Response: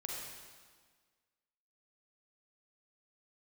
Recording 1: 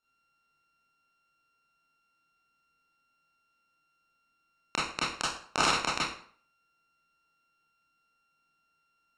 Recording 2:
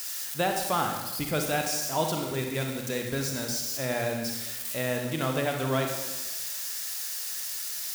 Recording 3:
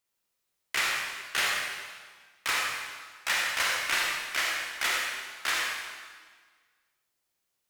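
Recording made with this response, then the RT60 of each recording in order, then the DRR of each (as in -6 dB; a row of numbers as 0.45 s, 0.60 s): 3; 0.55 s, 1.2 s, 1.6 s; -8.5 dB, 2.5 dB, -2.5 dB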